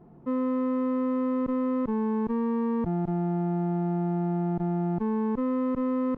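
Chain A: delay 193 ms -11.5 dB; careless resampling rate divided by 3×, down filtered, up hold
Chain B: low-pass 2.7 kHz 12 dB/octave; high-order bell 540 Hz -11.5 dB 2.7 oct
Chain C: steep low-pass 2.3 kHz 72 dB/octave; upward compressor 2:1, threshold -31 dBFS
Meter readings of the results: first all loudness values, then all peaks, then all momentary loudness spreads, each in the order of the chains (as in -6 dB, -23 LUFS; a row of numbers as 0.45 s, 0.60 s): -28.0 LUFS, -33.5 LUFS, -28.0 LUFS; -19.0 dBFS, -24.5 dBFS, -20.5 dBFS; 2 LU, 7 LU, 1 LU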